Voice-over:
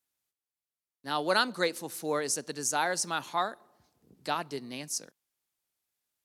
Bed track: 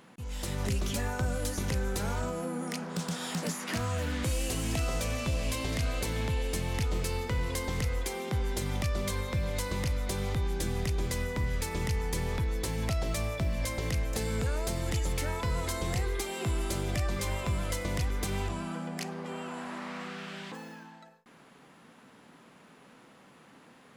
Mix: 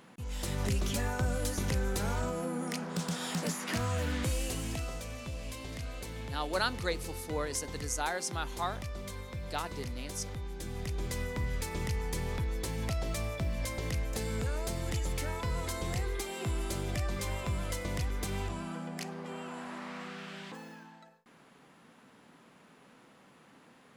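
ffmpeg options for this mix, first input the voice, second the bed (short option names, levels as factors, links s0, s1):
-filter_complex "[0:a]adelay=5250,volume=0.562[s0];[1:a]volume=2,afade=t=out:st=4.14:d=0.88:silence=0.354813,afade=t=in:st=10.57:d=0.64:silence=0.473151[s1];[s0][s1]amix=inputs=2:normalize=0"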